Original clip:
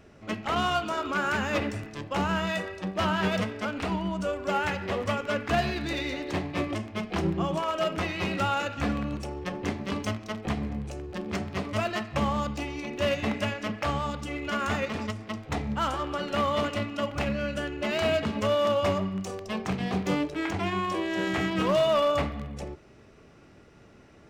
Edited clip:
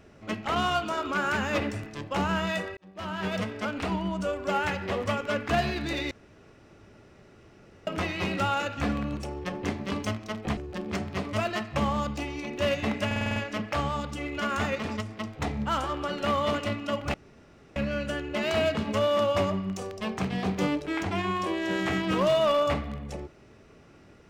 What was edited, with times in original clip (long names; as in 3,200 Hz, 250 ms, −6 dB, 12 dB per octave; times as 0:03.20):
0:02.77–0:03.59: fade in
0:06.11–0:07.87: fill with room tone
0:10.57–0:10.97: remove
0:13.46: stutter 0.05 s, 7 plays
0:17.24: splice in room tone 0.62 s